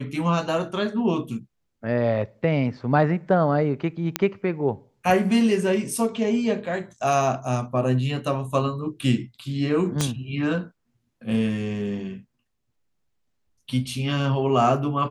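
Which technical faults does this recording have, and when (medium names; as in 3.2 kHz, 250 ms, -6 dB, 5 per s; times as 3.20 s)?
4.16 s: pop -5 dBFS
10.01 s: pop -9 dBFS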